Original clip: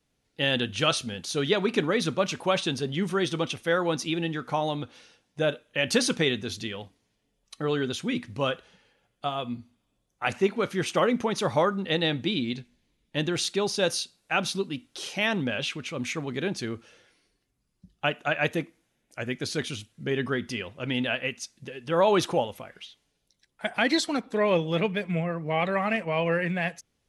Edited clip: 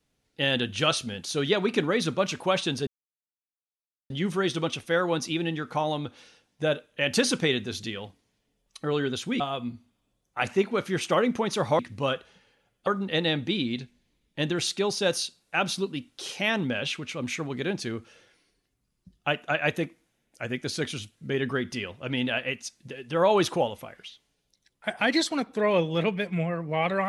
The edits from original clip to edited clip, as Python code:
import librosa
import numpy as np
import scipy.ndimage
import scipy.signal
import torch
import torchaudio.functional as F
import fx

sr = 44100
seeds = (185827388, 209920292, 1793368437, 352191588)

y = fx.edit(x, sr, fx.insert_silence(at_s=2.87, length_s=1.23),
    fx.move(start_s=8.17, length_s=1.08, to_s=11.64), tone=tone)